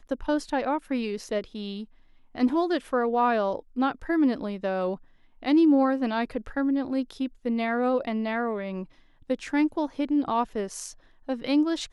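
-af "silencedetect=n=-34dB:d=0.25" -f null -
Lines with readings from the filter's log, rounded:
silence_start: 1.84
silence_end: 2.35 | silence_duration: 0.51
silence_start: 4.95
silence_end: 5.43 | silence_duration: 0.48
silence_start: 8.84
silence_end: 9.30 | silence_duration: 0.46
silence_start: 10.90
silence_end: 11.29 | silence_duration: 0.39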